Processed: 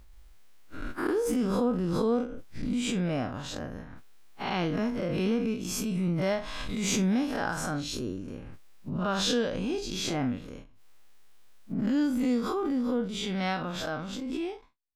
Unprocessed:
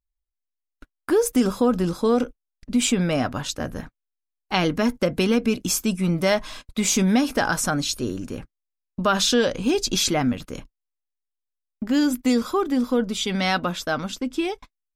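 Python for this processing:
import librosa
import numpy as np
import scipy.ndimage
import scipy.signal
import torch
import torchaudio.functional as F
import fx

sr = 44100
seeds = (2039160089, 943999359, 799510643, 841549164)

y = fx.spec_blur(x, sr, span_ms=97.0)
y = fx.high_shelf(y, sr, hz=4600.0, db=-10.0)
y = fx.pre_swell(y, sr, db_per_s=23.0)
y = F.gain(torch.from_numpy(y), -5.5).numpy()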